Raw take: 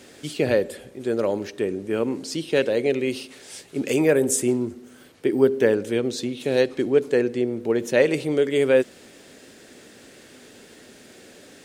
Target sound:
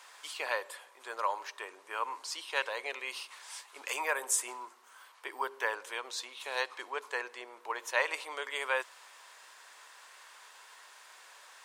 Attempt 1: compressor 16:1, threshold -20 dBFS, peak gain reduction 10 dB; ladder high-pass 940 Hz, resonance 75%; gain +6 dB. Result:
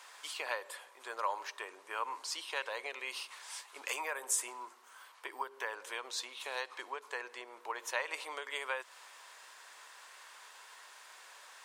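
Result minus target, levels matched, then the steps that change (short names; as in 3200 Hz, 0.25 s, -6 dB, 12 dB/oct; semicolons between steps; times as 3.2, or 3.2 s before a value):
compressor: peak gain reduction +10 dB
remove: compressor 16:1, threshold -20 dBFS, peak gain reduction 10 dB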